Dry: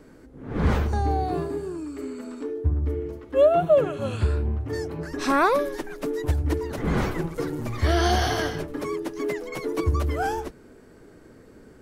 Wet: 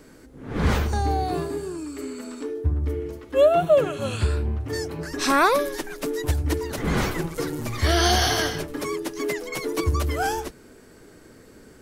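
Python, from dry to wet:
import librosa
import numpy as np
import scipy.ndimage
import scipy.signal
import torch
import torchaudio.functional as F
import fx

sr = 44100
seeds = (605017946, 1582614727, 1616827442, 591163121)

y = fx.high_shelf(x, sr, hz=2300.0, db=10.0)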